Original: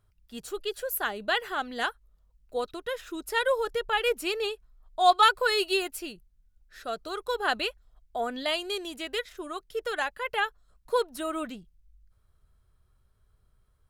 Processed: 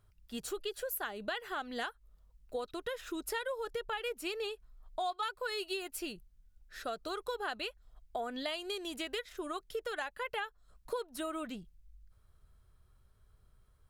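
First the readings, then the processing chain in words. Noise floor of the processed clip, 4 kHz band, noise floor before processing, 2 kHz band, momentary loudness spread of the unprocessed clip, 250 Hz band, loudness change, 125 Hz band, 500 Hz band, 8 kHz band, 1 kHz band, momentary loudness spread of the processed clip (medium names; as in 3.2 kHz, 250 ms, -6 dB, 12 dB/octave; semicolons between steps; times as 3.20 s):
-67 dBFS, -10.0 dB, -67 dBFS, -10.5 dB, 14 LU, -5.0 dB, -10.0 dB, no reading, -9.0 dB, -5.5 dB, -12.0 dB, 6 LU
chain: compression 6:1, threshold -36 dBFS, peak gain reduction 19.5 dB; trim +1 dB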